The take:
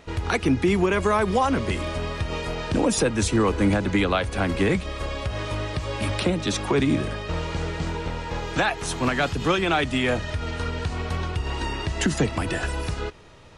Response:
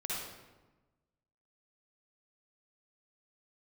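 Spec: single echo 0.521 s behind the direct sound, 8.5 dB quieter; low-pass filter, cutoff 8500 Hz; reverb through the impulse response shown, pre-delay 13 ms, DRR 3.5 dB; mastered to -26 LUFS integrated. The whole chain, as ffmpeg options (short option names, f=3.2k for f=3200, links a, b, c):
-filter_complex "[0:a]lowpass=8.5k,aecho=1:1:521:0.376,asplit=2[a][b];[1:a]atrim=start_sample=2205,adelay=13[c];[b][c]afir=irnorm=-1:irlink=0,volume=-6.5dB[d];[a][d]amix=inputs=2:normalize=0,volume=-3dB"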